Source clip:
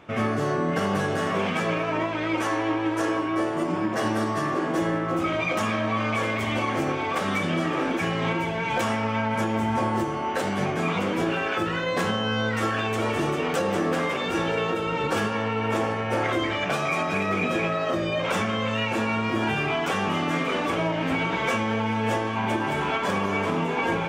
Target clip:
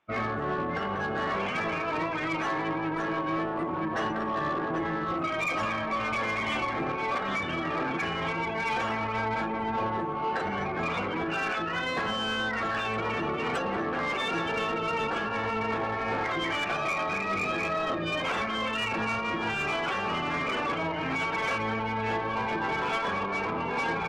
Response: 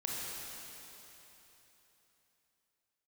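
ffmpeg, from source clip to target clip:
-filter_complex "[0:a]afftdn=nr=27:nf=-32,equalizer=f=570:t=o:w=0.32:g=-8,bandreject=f=60:t=h:w=6,bandreject=f=120:t=h:w=6,bandreject=f=180:t=h:w=6,bandreject=f=240:t=h:w=6,bandreject=f=300:t=h:w=6,bandreject=f=360:t=h:w=6,bandreject=f=420:t=h:w=6,alimiter=limit=-20.5dB:level=0:latency=1:release=415,asplit=2[a][b];[b]adelay=788,lowpass=f=1.1k:p=1,volume=-22dB,asplit=2[c][d];[d]adelay=788,lowpass=f=1.1k:p=1,volume=0.38,asplit=2[e][f];[f]adelay=788,lowpass=f=1.1k:p=1,volume=0.38[g];[a][c][e][g]amix=inputs=4:normalize=0,asplit=2[h][i];[i]highpass=f=720:p=1,volume=14dB,asoftclip=type=tanh:threshold=-19.5dB[j];[h][j]amix=inputs=2:normalize=0,lowpass=f=7.8k:p=1,volume=-6dB,asplit=2[k][l];[l]asetrate=22050,aresample=44100,atempo=2,volume=-8dB[m];[k][m]amix=inputs=2:normalize=0,volume=-3dB"

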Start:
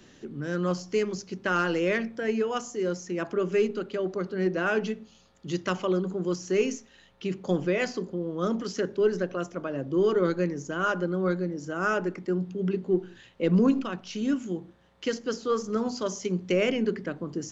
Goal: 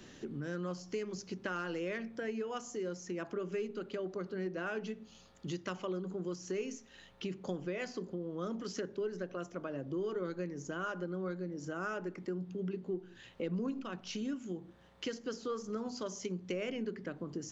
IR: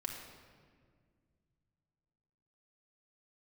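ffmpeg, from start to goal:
-af "acompressor=threshold=-39dB:ratio=3"

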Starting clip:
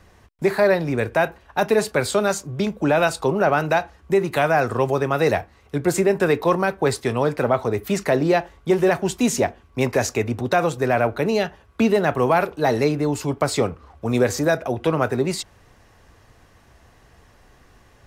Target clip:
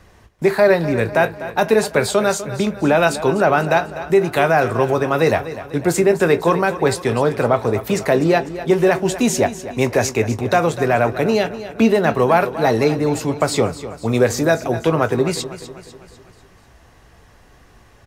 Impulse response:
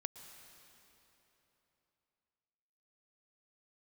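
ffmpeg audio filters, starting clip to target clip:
-filter_complex "[0:a]asplit=2[a][b];[b]adelay=18,volume=-13dB[c];[a][c]amix=inputs=2:normalize=0,aecho=1:1:249|498|747|996|1245:0.211|0.106|0.0528|0.0264|0.0132,volume=3dB"

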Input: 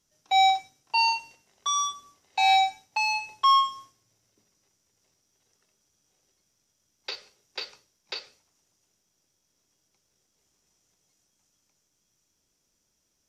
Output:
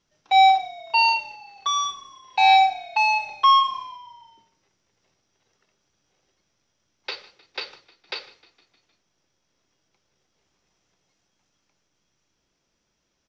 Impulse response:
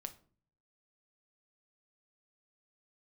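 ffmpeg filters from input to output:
-filter_complex "[0:a]lowpass=f=6k:w=0.5412,lowpass=f=6k:w=1.3066,asplit=6[a][b][c][d][e][f];[b]adelay=154,afreqshift=-34,volume=-21dB[g];[c]adelay=308,afreqshift=-68,volume=-25.4dB[h];[d]adelay=462,afreqshift=-102,volume=-29.9dB[i];[e]adelay=616,afreqshift=-136,volume=-34.3dB[j];[f]adelay=770,afreqshift=-170,volume=-38.7dB[k];[a][g][h][i][j][k]amix=inputs=6:normalize=0,asplit=2[l][m];[1:a]atrim=start_sample=2205,lowpass=4.1k,lowshelf=f=430:g=-8.5[n];[m][n]afir=irnorm=-1:irlink=0,volume=4.5dB[o];[l][o]amix=inputs=2:normalize=0"

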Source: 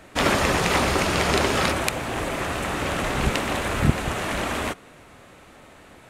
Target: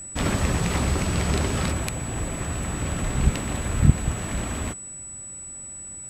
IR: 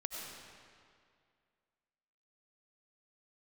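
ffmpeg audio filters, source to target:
-af "aeval=exprs='val(0)+0.0355*sin(2*PI*7900*n/s)':c=same,bass=f=250:g=14,treble=f=4k:g=2,volume=-8.5dB"

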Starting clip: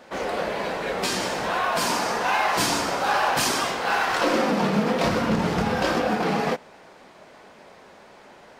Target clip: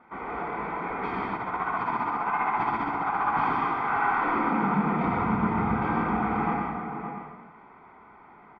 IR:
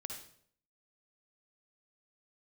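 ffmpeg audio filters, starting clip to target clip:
-filter_complex "[1:a]atrim=start_sample=2205,asetrate=23814,aresample=44100[a];[0:a][a]afir=irnorm=-1:irlink=0,asettb=1/sr,asplit=3[b][c][d];[b]atrim=end=1.354[e];[c]atrim=start=1.35:end=3.36,asetpts=PTS-STARTPTS,afade=t=in:d=0.004:c=qsin,afade=t=out:st=2.006:d=0.004:c=qsin,tremolo=f=15:d=0.54[f];[d]atrim=start=3.356[g];[e][f]acrossfade=d=0.004:c1=hsin:c2=qsin[h];[h][g]acrossfade=d=0.004:c1=qsin:c2=hsin,lowpass=f=1.9k:w=0.5412,lowpass=f=1.9k:w=1.3066,lowshelf=f=310:g=-6.5,bandreject=f=1.1k:w=26,aecho=1:1:0.9:0.81,asplit=2[i][j];[j]adelay=565.6,volume=-7dB,highshelf=f=4k:g=-12.7[k];[i][k]amix=inputs=2:normalize=0,volume=-4dB"

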